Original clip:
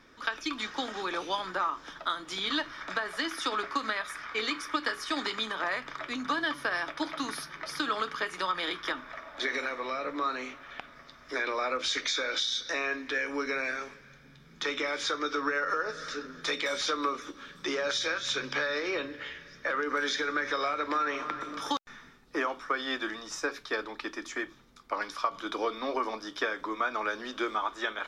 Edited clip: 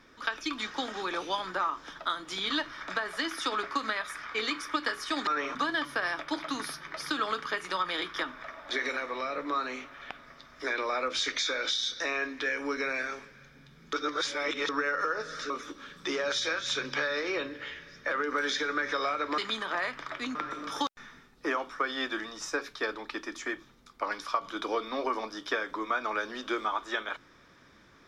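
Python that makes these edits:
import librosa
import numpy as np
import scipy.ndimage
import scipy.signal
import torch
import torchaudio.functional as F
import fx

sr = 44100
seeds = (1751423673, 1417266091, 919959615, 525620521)

y = fx.edit(x, sr, fx.swap(start_s=5.27, length_s=0.97, other_s=20.97, other_length_s=0.28),
    fx.reverse_span(start_s=14.62, length_s=0.76),
    fx.cut(start_s=16.19, length_s=0.9), tone=tone)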